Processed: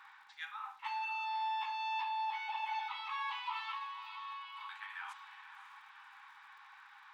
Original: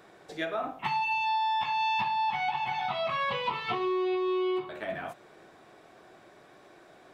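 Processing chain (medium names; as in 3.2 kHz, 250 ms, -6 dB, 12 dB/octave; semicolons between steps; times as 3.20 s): level-controlled noise filter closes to 2.7 kHz, open at -28.5 dBFS; reverse; compression 5:1, threshold -41 dBFS, peak gain reduction 14 dB; reverse; brick-wall FIR high-pass 790 Hz; on a send: echo that smears into a reverb 549 ms, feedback 51%, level -11 dB; on the sum: crackle 110 per s -63 dBFS; trim +3 dB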